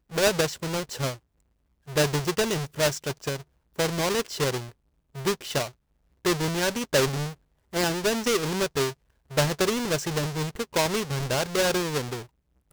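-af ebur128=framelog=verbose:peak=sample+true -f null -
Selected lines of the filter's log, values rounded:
Integrated loudness:
  I:         -26.7 LUFS
  Threshold: -37.1 LUFS
Loudness range:
  LRA:         2.3 LU
  Threshold: -47.3 LUFS
  LRA low:   -28.6 LUFS
  LRA high:  -26.3 LUFS
Sample peak:
  Peak:       -9.2 dBFS
True peak:
  Peak:       -8.8 dBFS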